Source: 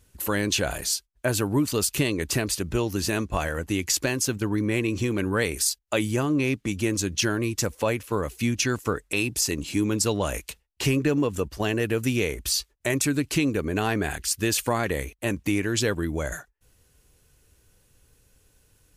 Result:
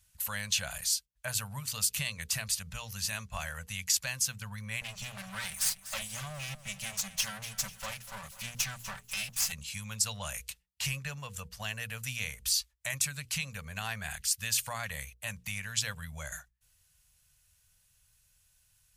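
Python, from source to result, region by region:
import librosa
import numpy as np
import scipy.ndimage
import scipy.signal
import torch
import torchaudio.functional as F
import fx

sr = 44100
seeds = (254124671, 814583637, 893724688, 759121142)

y = fx.chain(x, sr, fx.lower_of_two(delay_ms=5.2),
    fx.echo_feedback(ms=245, feedback_pct=46, wet_db=-14.5), at=(4.81, 9.52))
y = scipy.signal.sosfilt(scipy.signal.cheby1(2, 1.0, [180.0, 600.0], 'bandstop', fs=sr, output='sos'), y)
y = fx.tone_stack(y, sr, knobs='5-5-5')
y = fx.hum_notches(y, sr, base_hz=60, count=8)
y = F.gain(torch.from_numpy(y), 4.0).numpy()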